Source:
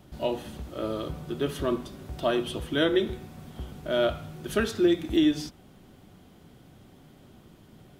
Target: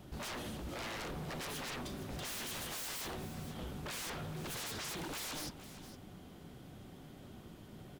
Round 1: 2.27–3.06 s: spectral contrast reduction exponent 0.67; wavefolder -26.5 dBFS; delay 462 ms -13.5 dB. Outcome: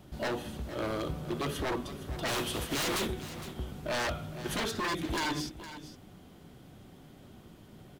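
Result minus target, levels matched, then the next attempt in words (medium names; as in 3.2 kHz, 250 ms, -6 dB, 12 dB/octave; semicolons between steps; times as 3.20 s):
wavefolder: distortion -10 dB
2.27–3.06 s: spectral contrast reduction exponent 0.67; wavefolder -37.5 dBFS; delay 462 ms -13.5 dB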